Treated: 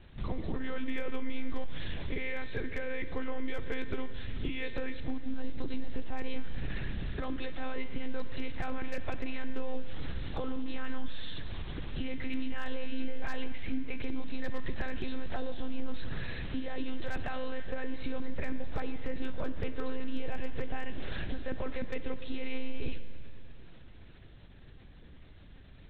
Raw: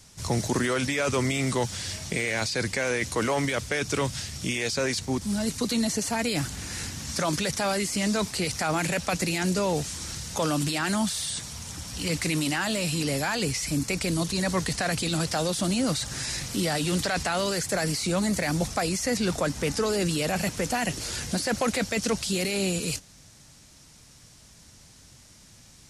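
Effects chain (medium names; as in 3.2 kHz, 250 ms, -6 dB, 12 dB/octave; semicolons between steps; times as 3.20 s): small resonant body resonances 300/420/1700 Hz, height 9 dB, ringing for 50 ms; pre-echo 40 ms -20.5 dB; compression 10:1, threshold -31 dBFS, peak gain reduction 15 dB; monotone LPC vocoder at 8 kHz 260 Hz; Schroeder reverb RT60 2.3 s, DRR 10.5 dB; wavefolder -22 dBFS; bass shelf 150 Hz +8 dB; trim -3.5 dB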